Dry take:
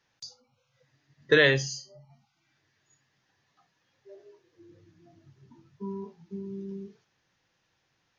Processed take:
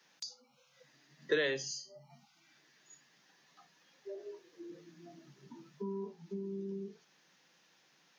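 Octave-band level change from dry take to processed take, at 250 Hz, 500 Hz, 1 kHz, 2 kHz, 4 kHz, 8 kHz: -7.0 dB, -8.5 dB, -10.0 dB, -13.0 dB, -10.0 dB, n/a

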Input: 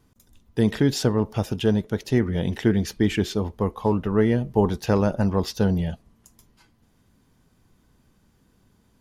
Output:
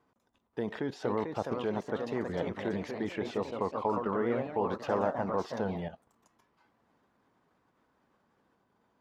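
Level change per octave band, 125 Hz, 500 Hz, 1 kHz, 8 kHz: -18.0 dB, -7.5 dB, -2.5 dB, under -15 dB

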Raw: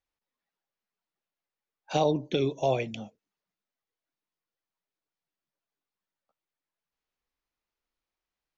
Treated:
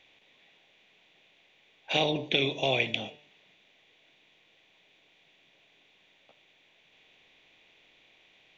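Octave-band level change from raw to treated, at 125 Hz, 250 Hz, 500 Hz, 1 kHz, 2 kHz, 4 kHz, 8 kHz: -3.5 dB, -3.0 dB, -3.0 dB, -3.0 dB, +11.0 dB, +10.5 dB, n/a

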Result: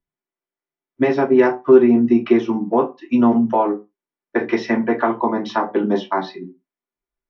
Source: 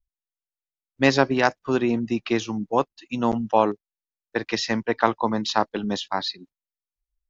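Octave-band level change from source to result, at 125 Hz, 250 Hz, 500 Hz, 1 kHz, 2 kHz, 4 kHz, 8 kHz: 0.0 dB, +8.5 dB, +8.0 dB, +2.5 dB, 0.0 dB, -8.5 dB, n/a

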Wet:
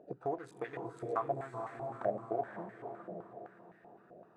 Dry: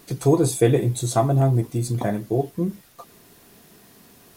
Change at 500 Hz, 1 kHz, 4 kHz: -15.0 dB, -9.5 dB, under -25 dB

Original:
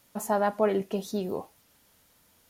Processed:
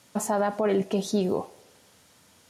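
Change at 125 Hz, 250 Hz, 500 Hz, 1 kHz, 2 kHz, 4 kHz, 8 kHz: +5.5, +4.5, +2.0, 0.0, +0.5, +5.5, +6.0 dB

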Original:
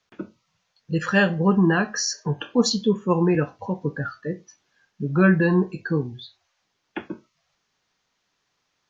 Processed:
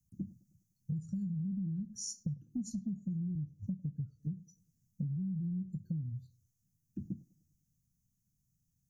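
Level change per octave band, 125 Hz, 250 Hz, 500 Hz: -12.0 dB, -15.5 dB, under -40 dB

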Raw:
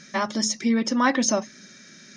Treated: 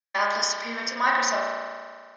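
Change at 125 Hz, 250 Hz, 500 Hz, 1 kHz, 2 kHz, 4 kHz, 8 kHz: n/a, -17.0 dB, -2.0 dB, +3.0 dB, +4.5 dB, +0.5 dB, -4.0 dB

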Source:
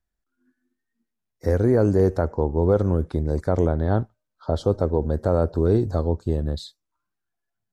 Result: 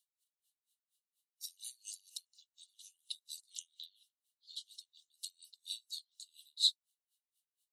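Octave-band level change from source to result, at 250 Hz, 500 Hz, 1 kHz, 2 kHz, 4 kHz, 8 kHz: under -40 dB, under -40 dB, under -40 dB, -31.5 dB, +8.5 dB, n/a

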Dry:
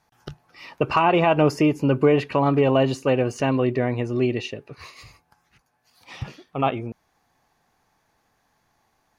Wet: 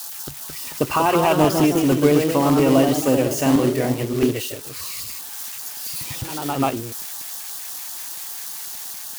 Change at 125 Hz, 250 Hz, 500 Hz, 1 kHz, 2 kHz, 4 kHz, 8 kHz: +0.5, +4.5, +1.5, +1.5, +0.5, +6.0, +18.5 dB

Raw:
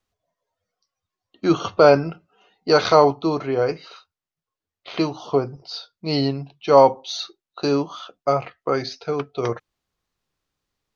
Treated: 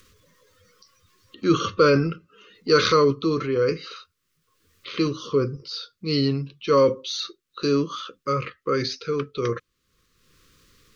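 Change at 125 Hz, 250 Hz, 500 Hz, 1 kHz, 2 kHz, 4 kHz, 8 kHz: +1.0 dB, -0.5 dB, -3.0 dB, -6.0 dB, 0.0 dB, +1.0 dB, n/a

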